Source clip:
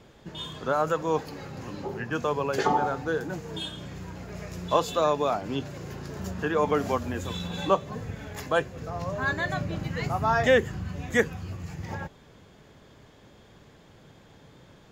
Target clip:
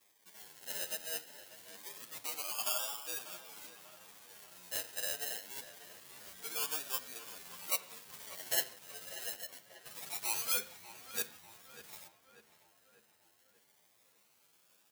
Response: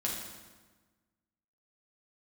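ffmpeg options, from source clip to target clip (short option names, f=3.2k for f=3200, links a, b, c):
-filter_complex "[0:a]asettb=1/sr,asplit=3[a][b][c];[a]atrim=end=2.144[d];[b]atrim=start=2.14:end=3.06,asetpts=PTS-STARTPTS,afade=t=in:d=0.004:c=qsin,afade=t=out:st=0.916:d=0.004:c=qsin,lowpass=f=3k:t=q:w=0.5098,lowpass=f=3k:t=q:w=0.6013,lowpass=f=3k:t=q:w=0.9,lowpass=f=3k:t=q:w=2.563,afreqshift=-3500[e];[c]atrim=start=3.056[f];[d][e]acrossfade=d=0.004:c1=hsin:c2=qsin[g];[g][f]acrossfade=d=0.004:c1=qsin:c2=hsin,asettb=1/sr,asplit=3[h][i][j];[h]atrim=end=8.124[k];[i]atrim=start=8.12:end=8.73,asetpts=PTS-STARTPTS,afade=t=in:d=0.004:c=qsin,afade=t=out:st=0.606:d=0.004:c=qsin,acontrast=64[l];[j]atrim=start=8.726[m];[k][l]acrossfade=d=0.004:c1=hsin:c2=qsin[n];[n][m]acrossfade=d=0.004:c1=qsin:c2=hsin,asplit=3[o][p][q];[o]afade=t=out:st=9.35:d=0.02[r];[p]highpass=1.3k,afade=t=in:st=9.35:d=0.02,afade=t=out:st=9.84:d=0.02[s];[q]afade=t=in:st=9.84:d=0.02[t];[r][s][t]amix=inputs=3:normalize=0,acrusher=samples=30:mix=1:aa=0.000001:lfo=1:lforange=18:lforate=0.25,aderivative,asplit=2[u][v];[v]adelay=591,lowpass=f=2.7k:p=1,volume=-12dB,asplit=2[w][x];[x]adelay=591,lowpass=f=2.7k:p=1,volume=0.55,asplit=2[y][z];[z]adelay=591,lowpass=f=2.7k:p=1,volume=0.55,asplit=2[aa][ab];[ab]adelay=591,lowpass=f=2.7k:p=1,volume=0.55,asplit=2[ac][ad];[ad]adelay=591,lowpass=f=2.7k:p=1,volume=0.55,asplit=2[ae][af];[af]adelay=591,lowpass=f=2.7k:p=1,volume=0.55[ag];[u][w][y][aa][ac][ae][ag]amix=inputs=7:normalize=0,asplit=2[ah][ai];[1:a]atrim=start_sample=2205,afade=t=out:st=0.22:d=0.01,atrim=end_sample=10143,lowpass=4.3k[aj];[ai][aj]afir=irnorm=-1:irlink=0,volume=-15dB[ak];[ah][ak]amix=inputs=2:normalize=0,asplit=2[al][am];[am]adelay=9.9,afreqshift=1.6[an];[al][an]amix=inputs=2:normalize=1"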